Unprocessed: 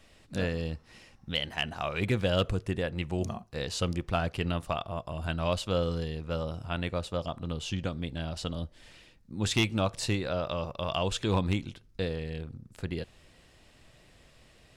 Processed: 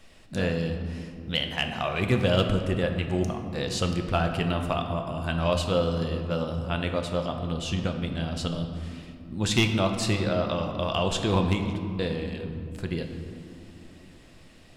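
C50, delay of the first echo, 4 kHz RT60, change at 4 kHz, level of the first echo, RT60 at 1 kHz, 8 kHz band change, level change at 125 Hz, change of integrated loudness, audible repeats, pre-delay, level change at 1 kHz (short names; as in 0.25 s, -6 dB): 6.5 dB, none, 1.3 s, +4.0 dB, none, 2.4 s, +3.5 dB, +4.5 dB, +4.5 dB, none, 5 ms, +4.5 dB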